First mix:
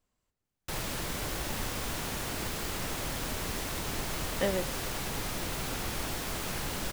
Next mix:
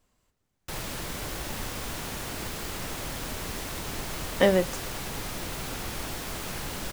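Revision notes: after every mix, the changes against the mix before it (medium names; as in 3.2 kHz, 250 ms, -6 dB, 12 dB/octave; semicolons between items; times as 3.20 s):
speech +9.5 dB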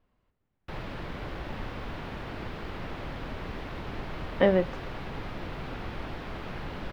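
master: add distance through air 360 m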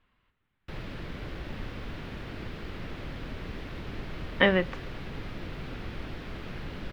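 speech: add high-order bell 1.8 kHz +11 dB 2.5 oct; master: add peaking EQ 860 Hz -7.5 dB 1.3 oct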